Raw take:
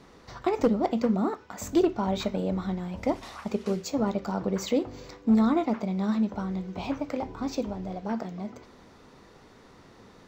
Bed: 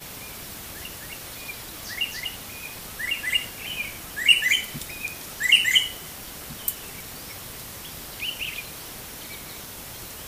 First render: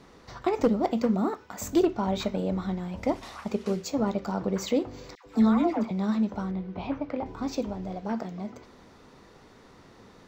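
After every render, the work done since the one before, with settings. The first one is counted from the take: 0.68–1.86 high shelf 9400 Hz +6 dB; 5.15–5.91 dispersion lows, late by 0.103 s, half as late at 1100 Hz; 6.51–7.26 air absorption 230 m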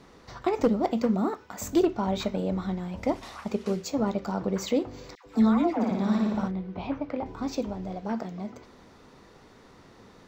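5.74–6.48 flutter echo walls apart 9.7 m, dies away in 1.2 s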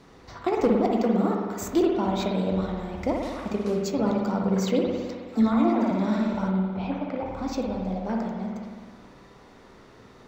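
spring tank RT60 1.6 s, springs 53 ms, chirp 55 ms, DRR 0.5 dB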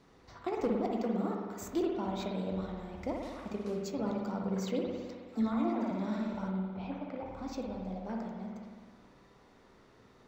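gain -10 dB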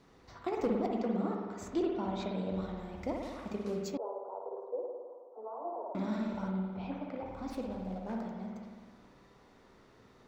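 0.87–2.54 air absorption 58 m; 3.97–5.95 elliptic band-pass 410–1000 Hz, stop band 50 dB; 7.5–8.21 running maximum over 5 samples

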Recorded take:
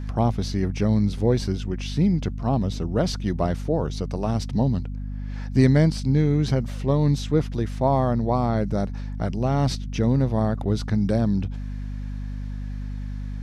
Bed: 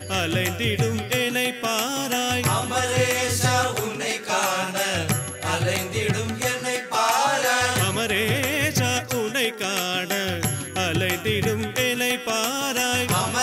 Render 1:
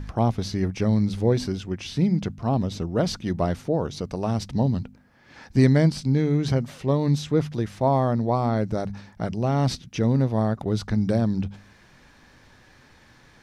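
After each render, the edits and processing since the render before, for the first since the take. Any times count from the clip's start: de-hum 50 Hz, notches 5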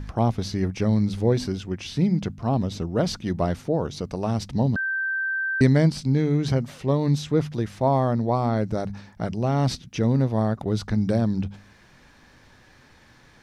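4.76–5.61 bleep 1560 Hz -23 dBFS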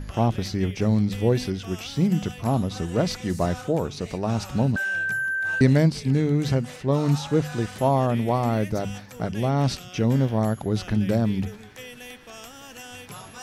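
add bed -18.5 dB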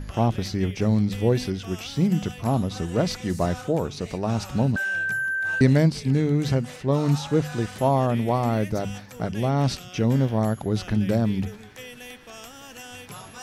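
nothing audible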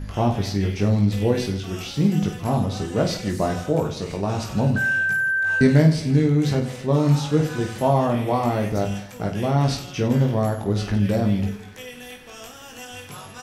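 reverse bouncing-ball echo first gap 20 ms, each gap 1.5×, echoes 5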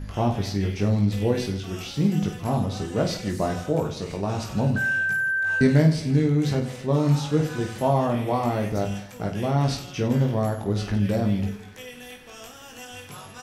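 gain -2.5 dB

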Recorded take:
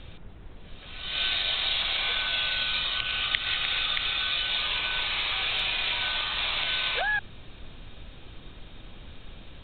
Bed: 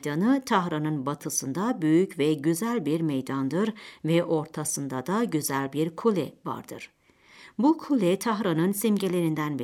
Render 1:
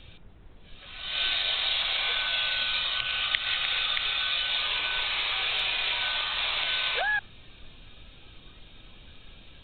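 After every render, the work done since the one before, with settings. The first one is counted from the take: noise print and reduce 6 dB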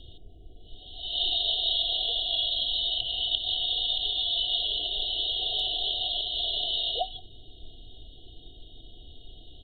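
FFT band-reject 760–2800 Hz; comb 2.7 ms, depth 59%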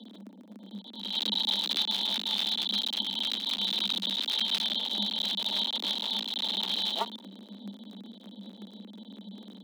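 cycle switcher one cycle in 3, muted; frequency shift +190 Hz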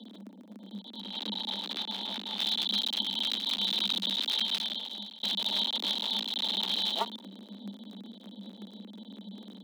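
1.01–2.4 high shelf 2900 Hz -11.5 dB; 4.32–5.23 fade out, to -21.5 dB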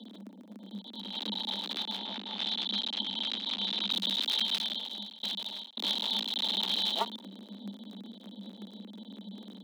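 1.98–3.91 air absorption 120 m; 5.05–5.77 fade out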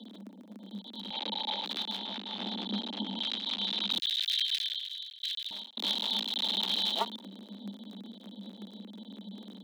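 1.1–1.65 speaker cabinet 250–6000 Hz, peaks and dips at 540 Hz +6 dB, 840 Hz +8 dB, 2300 Hz +6 dB, 5400 Hz -4 dB; 2.38–3.19 tilt shelf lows +8.5 dB, about 1300 Hz; 3.99–5.51 steep high-pass 1600 Hz 72 dB/oct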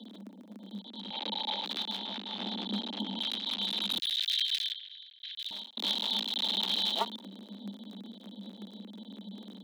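0.84–1.25 air absorption 58 m; 2.66–4.14 hard clip -25 dBFS; 4.73–5.39 air absorption 310 m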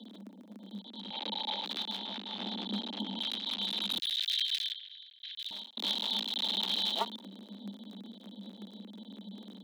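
gain -1.5 dB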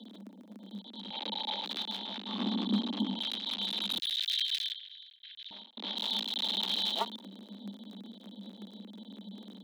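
2.26–3.13 small resonant body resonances 250/1100 Hz, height 12 dB -> 8 dB, ringing for 20 ms; 5.16–5.97 air absorption 240 m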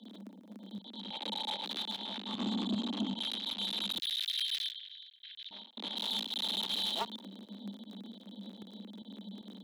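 pump 153 bpm, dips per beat 1, -14 dB, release 65 ms; soft clip -27 dBFS, distortion -16 dB

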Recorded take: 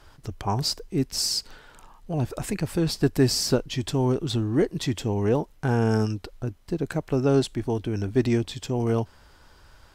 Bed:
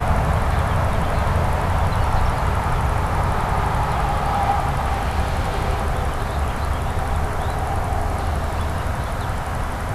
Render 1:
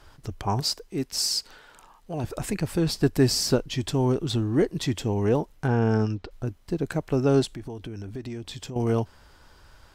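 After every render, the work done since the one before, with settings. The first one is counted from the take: 0.6–2.24 low shelf 230 Hz -9.5 dB; 5.67–6.31 air absorption 130 m; 7.45–8.76 compressor 5:1, threshold -33 dBFS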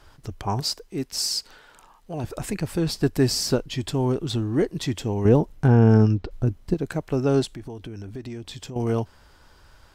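3.67–4.24 notch 5900 Hz; 5.25–6.74 low shelf 450 Hz +9 dB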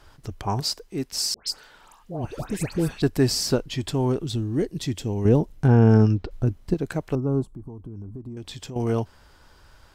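1.34–3.02 dispersion highs, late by 0.135 s, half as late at 1700 Hz; 4.23–5.68 bell 1100 Hz -11 dB -> -3 dB 2.3 oct; 7.15–8.37 EQ curve 200 Hz 0 dB, 420 Hz -6 dB, 690 Hz -11 dB, 1100 Hz -3 dB, 1800 Hz -29 dB, 5100 Hz -26 dB, 9100 Hz -15 dB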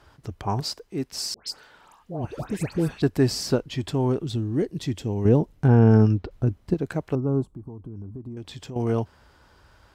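HPF 48 Hz; high shelf 3600 Hz -6.5 dB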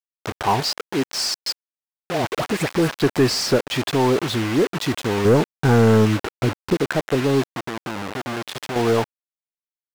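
requantised 6-bit, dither none; overdrive pedal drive 21 dB, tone 2800 Hz, clips at -6 dBFS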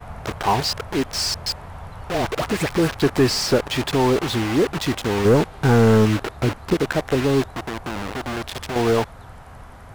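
add bed -17 dB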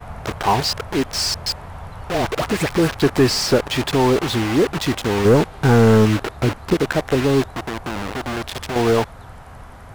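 gain +2 dB

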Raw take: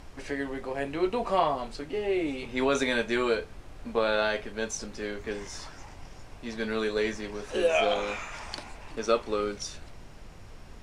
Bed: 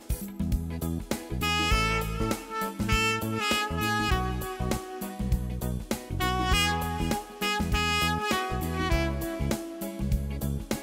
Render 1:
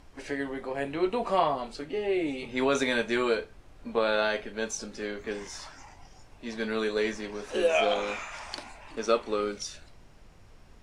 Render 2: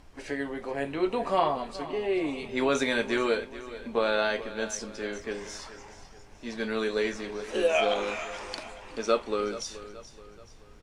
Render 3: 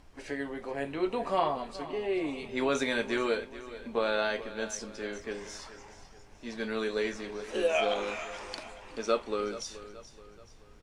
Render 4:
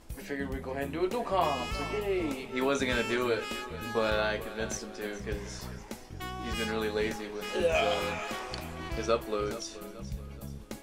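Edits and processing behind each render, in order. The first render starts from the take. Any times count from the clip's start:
noise print and reduce 7 dB
feedback echo 0.428 s, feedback 44%, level -15 dB
gain -3 dB
add bed -11.5 dB

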